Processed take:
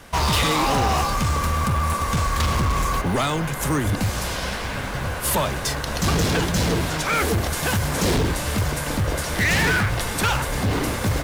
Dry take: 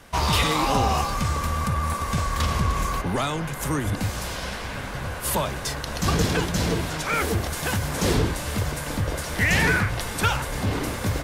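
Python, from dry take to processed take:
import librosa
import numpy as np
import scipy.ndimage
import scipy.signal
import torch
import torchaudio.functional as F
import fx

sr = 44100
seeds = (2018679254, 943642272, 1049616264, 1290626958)

p1 = fx.quant_float(x, sr, bits=2)
p2 = x + (p1 * 10.0 ** (-4.0 / 20.0))
y = np.clip(p2, -10.0 ** (-16.5 / 20.0), 10.0 ** (-16.5 / 20.0))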